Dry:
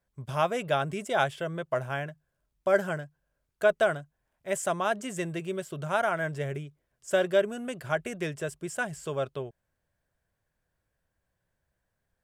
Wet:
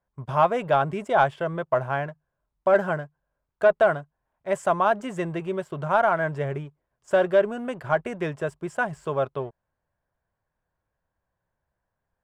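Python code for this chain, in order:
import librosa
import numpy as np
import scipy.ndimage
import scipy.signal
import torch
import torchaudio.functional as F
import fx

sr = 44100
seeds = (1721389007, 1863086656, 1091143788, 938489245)

y = fx.leveller(x, sr, passes=1)
y = fx.lowpass(y, sr, hz=1800.0, slope=6)
y = fx.peak_eq(y, sr, hz=960.0, db=8.0, octaves=0.99)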